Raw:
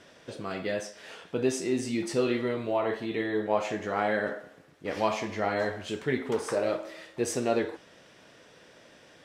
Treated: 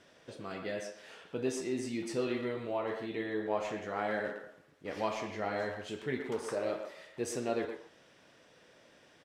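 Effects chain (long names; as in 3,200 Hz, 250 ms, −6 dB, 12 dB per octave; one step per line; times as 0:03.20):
far-end echo of a speakerphone 120 ms, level −7 dB
level −7 dB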